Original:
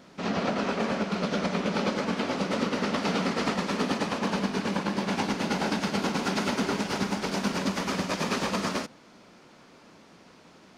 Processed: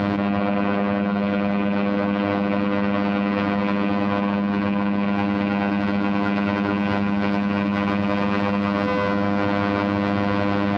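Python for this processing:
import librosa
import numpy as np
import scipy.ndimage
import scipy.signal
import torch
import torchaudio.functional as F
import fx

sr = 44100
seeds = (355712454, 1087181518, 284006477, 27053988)

y = fx.rattle_buzz(x, sr, strikes_db=-31.0, level_db=-22.0)
y = fx.peak_eq(y, sr, hz=61.0, db=10.5, octaves=1.4)
y = fx.robotise(y, sr, hz=101.0)
y = fx.air_absorb(y, sr, metres=410.0)
y = fx.notch_comb(y, sr, f0_hz=430.0)
y = fx.echo_feedback(y, sr, ms=113, feedback_pct=56, wet_db=-17)
y = fx.env_flatten(y, sr, amount_pct=100)
y = y * 10.0 ** (4.0 / 20.0)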